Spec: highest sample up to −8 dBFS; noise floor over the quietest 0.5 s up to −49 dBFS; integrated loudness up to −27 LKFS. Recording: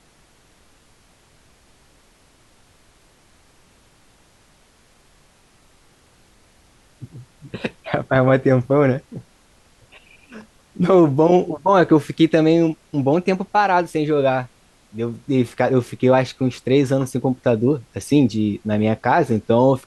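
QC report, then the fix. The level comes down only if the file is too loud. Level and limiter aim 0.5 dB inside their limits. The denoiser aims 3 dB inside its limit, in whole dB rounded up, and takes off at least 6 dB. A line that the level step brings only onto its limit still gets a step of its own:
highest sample −4.0 dBFS: out of spec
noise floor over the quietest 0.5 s −55 dBFS: in spec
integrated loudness −18.5 LKFS: out of spec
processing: level −9 dB

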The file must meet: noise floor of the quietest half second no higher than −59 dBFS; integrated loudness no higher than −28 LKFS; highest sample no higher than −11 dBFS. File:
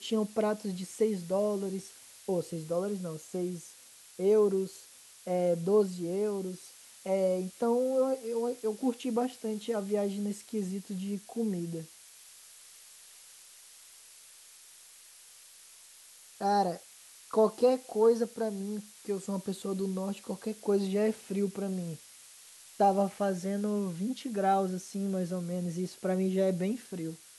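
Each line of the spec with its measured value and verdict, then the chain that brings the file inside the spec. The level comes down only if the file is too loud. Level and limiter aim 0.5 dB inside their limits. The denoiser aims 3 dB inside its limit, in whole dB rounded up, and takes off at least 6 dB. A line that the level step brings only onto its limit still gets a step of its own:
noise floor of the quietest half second −55 dBFS: out of spec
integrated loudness −31.5 LKFS: in spec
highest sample −14.5 dBFS: in spec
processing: broadband denoise 7 dB, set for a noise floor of −55 dBFS

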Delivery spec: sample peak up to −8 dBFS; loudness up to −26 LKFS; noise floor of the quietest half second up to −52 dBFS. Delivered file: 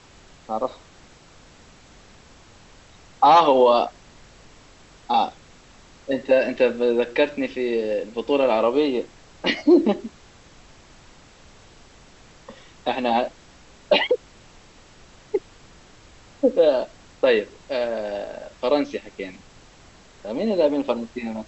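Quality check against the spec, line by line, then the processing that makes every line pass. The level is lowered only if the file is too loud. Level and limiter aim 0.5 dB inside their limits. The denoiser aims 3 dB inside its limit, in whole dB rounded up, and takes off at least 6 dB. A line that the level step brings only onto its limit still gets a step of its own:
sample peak −4.5 dBFS: out of spec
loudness −21.5 LKFS: out of spec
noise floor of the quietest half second −50 dBFS: out of spec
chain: level −5 dB

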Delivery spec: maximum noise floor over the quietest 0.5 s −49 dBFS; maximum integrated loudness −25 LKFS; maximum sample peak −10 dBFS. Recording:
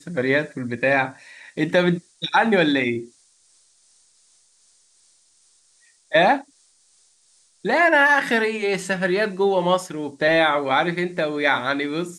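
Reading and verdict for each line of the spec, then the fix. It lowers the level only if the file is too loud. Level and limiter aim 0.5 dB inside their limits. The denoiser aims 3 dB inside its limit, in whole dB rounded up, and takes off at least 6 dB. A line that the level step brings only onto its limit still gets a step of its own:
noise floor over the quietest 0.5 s −60 dBFS: in spec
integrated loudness −20.5 LKFS: out of spec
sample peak −6.0 dBFS: out of spec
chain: level −5 dB

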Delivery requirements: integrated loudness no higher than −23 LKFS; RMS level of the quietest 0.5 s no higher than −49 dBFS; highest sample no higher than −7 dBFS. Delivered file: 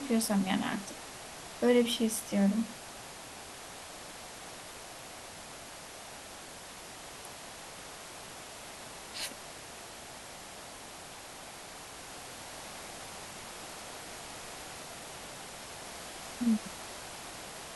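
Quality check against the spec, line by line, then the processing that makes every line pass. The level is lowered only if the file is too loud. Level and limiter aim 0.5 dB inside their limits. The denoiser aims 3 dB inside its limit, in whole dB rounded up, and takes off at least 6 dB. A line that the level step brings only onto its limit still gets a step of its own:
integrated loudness −37.5 LKFS: in spec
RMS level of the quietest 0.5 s −47 dBFS: out of spec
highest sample −15.0 dBFS: in spec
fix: broadband denoise 6 dB, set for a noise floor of −47 dBFS

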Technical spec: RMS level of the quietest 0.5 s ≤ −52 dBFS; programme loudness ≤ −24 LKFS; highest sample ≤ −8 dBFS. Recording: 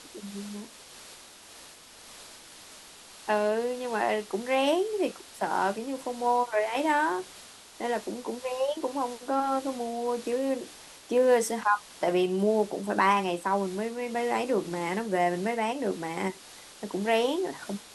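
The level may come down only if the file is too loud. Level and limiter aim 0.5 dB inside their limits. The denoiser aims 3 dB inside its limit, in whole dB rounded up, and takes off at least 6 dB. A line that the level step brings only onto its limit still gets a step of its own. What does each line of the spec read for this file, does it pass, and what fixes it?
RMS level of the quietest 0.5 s −50 dBFS: out of spec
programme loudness −28.5 LKFS: in spec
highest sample −11.0 dBFS: in spec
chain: broadband denoise 6 dB, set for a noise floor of −50 dBFS

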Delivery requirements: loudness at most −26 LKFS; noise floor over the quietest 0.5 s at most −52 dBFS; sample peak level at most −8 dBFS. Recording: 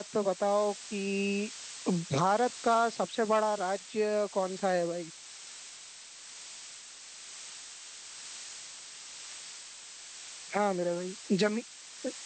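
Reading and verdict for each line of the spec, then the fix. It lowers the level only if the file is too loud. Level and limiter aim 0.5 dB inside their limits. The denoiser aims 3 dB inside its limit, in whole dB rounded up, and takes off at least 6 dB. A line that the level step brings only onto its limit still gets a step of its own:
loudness −31.5 LKFS: in spec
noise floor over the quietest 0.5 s −49 dBFS: out of spec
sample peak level −14.5 dBFS: in spec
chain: broadband denoise 6 dB, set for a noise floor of −49 dBFS

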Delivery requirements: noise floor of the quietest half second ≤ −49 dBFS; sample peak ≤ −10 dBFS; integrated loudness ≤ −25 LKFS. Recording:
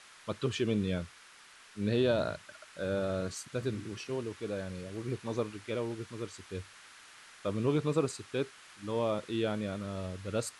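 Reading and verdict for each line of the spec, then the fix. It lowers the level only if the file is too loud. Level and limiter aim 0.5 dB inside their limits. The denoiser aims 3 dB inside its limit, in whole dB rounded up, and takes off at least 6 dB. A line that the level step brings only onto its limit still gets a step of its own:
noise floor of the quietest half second −56 dBFS: in spec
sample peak −17.0 dBFS: in spec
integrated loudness −35.0 LKFS: in spec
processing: no processing needed

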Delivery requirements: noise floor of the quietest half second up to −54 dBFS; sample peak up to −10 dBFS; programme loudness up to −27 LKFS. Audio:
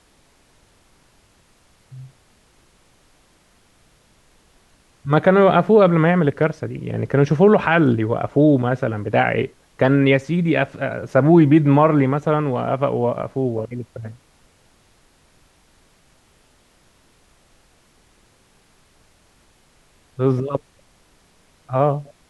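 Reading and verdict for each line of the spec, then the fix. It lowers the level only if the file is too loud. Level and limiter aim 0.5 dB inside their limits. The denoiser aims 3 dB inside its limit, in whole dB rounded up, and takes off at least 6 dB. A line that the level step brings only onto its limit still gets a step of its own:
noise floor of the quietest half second −57 dBFS: in spec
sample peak −3.0 dBFS: out of spec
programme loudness −17.5 LKFS: out of spec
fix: level −10 dB

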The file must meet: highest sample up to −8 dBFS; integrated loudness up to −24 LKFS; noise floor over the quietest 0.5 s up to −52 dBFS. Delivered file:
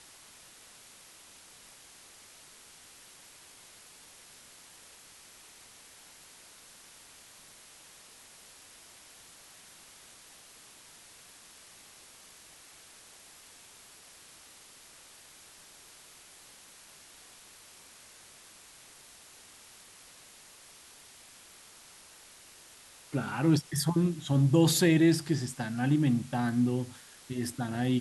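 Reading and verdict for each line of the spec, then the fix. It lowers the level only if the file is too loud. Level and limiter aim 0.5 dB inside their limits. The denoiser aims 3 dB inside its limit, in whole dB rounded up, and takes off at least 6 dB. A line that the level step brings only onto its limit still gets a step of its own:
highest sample −12.5 dBFS: in spec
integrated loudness −28.0 LKFS: in spec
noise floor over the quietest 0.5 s −54 dBFS: in spec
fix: no processing needed

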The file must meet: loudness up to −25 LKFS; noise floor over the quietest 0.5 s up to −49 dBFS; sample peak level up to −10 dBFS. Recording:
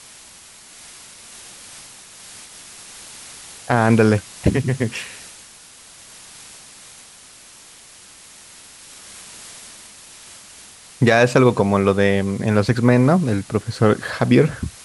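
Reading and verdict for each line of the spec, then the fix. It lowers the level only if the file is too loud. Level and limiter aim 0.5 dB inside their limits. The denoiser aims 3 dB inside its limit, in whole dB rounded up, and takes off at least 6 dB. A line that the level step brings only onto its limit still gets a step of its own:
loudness −17.5 LKFS: out of spec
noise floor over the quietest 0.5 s −45 dBFS: out of spec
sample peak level −2.5 dBFS: out of spec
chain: level −8 dB

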